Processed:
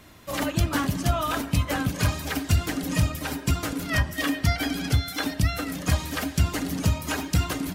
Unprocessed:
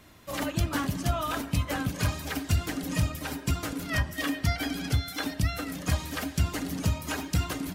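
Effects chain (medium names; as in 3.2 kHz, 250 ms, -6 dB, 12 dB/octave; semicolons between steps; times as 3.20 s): 2.63–4.81 s: crackle 57 per s -54 dBFS; trim +4 dB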